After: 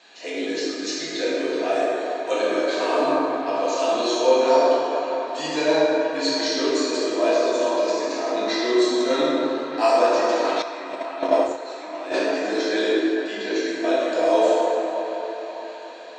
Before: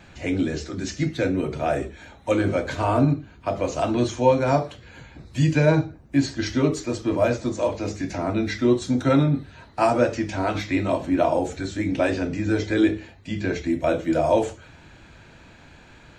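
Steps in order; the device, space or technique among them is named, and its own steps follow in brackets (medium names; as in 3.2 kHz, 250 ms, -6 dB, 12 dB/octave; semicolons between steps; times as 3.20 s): phone speaker on a table (cabinet simulation 410–7500 Hz, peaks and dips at 550 Hz -7 dB, 830 Hz -6 dB, 1.4 kHz -10 dB, 2.2 kHz -7 dB, 4.2 kHz +7 dB); plate-style reverb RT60 3.6 s, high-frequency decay 0.4×, DRR -8 dB; 10.62–12.14 s: gate -18 dBFS, range -13 dB; feedback echo behind a band-pass 612 ms, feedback 55%, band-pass 1.5 kHz, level -10.5 dB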